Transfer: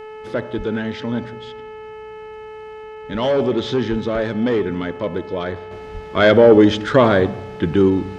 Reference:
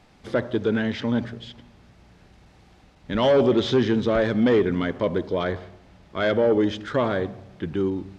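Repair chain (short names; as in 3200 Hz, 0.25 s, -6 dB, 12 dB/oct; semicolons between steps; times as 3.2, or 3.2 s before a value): de-hum 432.7 Hz, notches 7; de-plosive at 0.57/3.9/5.93; gain 0 dB, from 5.71 s -10 dB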